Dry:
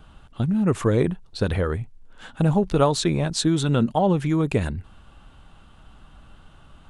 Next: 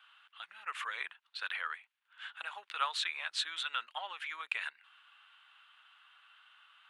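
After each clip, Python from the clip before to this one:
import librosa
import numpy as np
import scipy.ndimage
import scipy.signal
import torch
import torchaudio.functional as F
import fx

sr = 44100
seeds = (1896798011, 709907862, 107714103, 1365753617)

y = scipy.signal.sosfilt(scipy.signal.butter(4, 1300.0, 'highpass', fs=sr, output='sos'), x)
y = fx.high_shelf_res(y, sr, hz=4300.0, db=-11.5, q=1.5)
y = y * librosa.db_to_amplitude(-2.5)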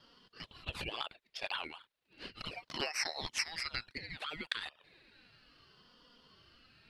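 y = fx.env_flanger(x, sr, rest_ms=4.8, full_db=-33.5)
y = fx.ring_lfo(y, sr, carrier_hz=1300.0, swing_pct=30, hz=0.33)
y = y * librosa.db_to_amplitude(5.0)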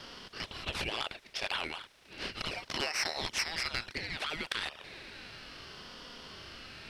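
y = fx.bin_compress(x, sr, power=0.6)
y = 10.0 ** (-21.5 / 20.0) * np.tanh(y / 10.0 ** (-21.5 / 20.0))
y = y * librosa.db_to_amplitude(1.5)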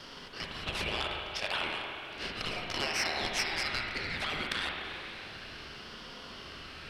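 y = fx.rev_spring(x, sr, rt60_s=2.6, pass_ms=(40, 53, 58), chirp_ms=45, drr_db=0.0)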